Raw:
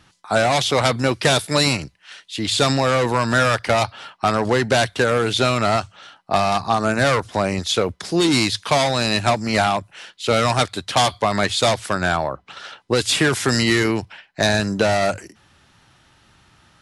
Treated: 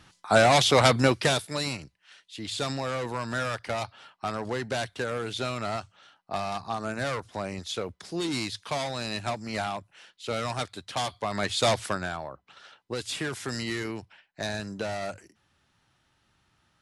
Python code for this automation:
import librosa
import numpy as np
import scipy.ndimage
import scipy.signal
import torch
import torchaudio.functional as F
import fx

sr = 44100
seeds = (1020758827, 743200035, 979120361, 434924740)

y = fx.gain(x, sr, db=fx.line((1.04, -1.5), (1.54, -13.0), (11.16, -13.0), (11.82, -3.5), (12.11, -14.5)))